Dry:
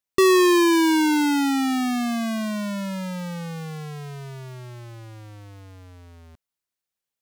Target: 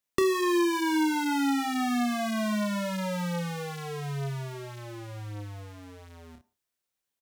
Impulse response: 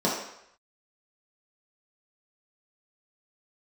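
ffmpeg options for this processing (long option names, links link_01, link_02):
-filter_complex "[0:a]aecho=1:1:29|58:0.596|0.316,asplit=2[link_01][link_02];[1:a]atrim=start_sample=2205,atrim=end_sample=6615[link_03];[link_02][link_03]afir=irnorm=-1:irlink=0,volume=-29.5dB[link_04];[link_01][link_04]amix=inputs=2:normalize=0,acrossover=split=440|1900[link_05][link_06][link_07];[link_05]acompressor=threshold=-30dB:ratio=4[link_08];[link_06]acompressor=threshold=-31dB:ratio=4[link_09];[link_07]acompressor=threshold=-37dB:ratio=4[link_10];[link_08][link_09][link_10]amix=inputs=3:normalize=0"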